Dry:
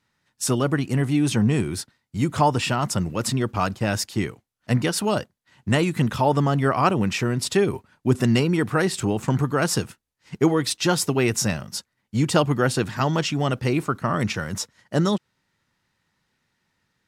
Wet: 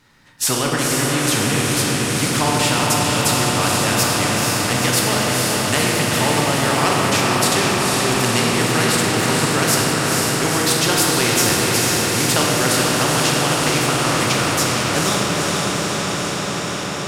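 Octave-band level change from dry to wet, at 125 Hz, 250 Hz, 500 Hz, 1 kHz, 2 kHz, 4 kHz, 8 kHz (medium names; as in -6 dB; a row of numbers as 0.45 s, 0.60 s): +1.5 dB, +2.5 dB, +4.0 dB, +7.0 dB, +10.5 dB, +12.5 dB, +13.0 dB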